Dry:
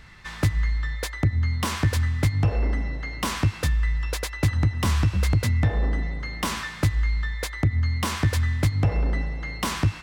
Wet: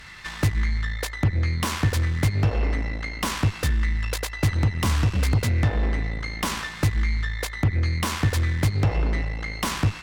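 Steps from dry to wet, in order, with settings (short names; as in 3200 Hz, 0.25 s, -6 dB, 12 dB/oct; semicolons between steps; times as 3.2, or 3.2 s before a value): added harmonics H 8 -20 dB, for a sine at -13.5 dBFS; mismatched tape noise reduction encoder only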